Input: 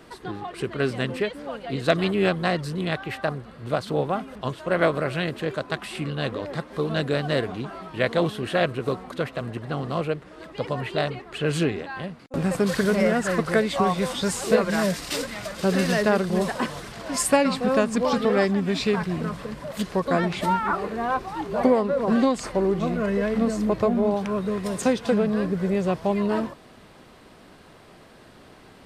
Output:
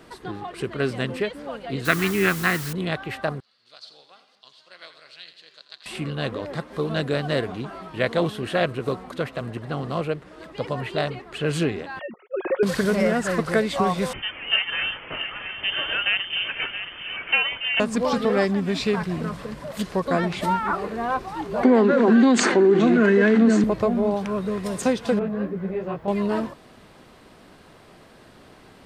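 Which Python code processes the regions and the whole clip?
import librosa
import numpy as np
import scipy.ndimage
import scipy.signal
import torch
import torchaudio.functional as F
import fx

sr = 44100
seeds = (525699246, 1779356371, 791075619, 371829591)

y = fx.chain(x, sr, fx.curve_eq(hz=(400.0, 590.0, 1300.0, 2100.0, 3300.0), db=(0, -11, 7, 8, -2)),
    fx.quant_dither(seeds[0], bits=6, dither='triangular'), at=(1.85, 2.73))
y = fx.chain(y, sr, fx.bandpass_q(hz=4500.0, q=4.0),
    fx.echo_split(split_hz=810.0, low_ms=116, high_ms=84, feedback_pct=52, wet_db=-11.0), at=(3.4, 5.86))
y = fx.chain(y, sr, fx.sine_speech(),
    fx.comb(ms=5.5, depth=0.33), at=(11.99, 12.63))
y = fx.chain(y, sr, fx.highpass(hz=480.0, slope=6),
    fx.freq_invert(carrier_hz=3300),
    fx.echo_single(ms=675, db=-10.0), at=(14.13, 17.8))
y = fx.chain(y, sr, fx.cabinet(low_hz=220.0, low_slope=24, high_hz=7000.0, hz=(230.0, 370.0, 580.0, 1100.0, 1600.0, 5200.0), db=(7, 6, -9, -5, 7, -8)),
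    fx.env_flatten(amount_pct=70), at=(21.63, 23.64))
y = fx.chain(y, sr, fx.lowpass(hz=2300.0, slope=12),
    fx.quant_dither(seeds[1], bits=12, dither='triangular'),
    fx.detune_double(cents=37), at=(25.19, 26.08))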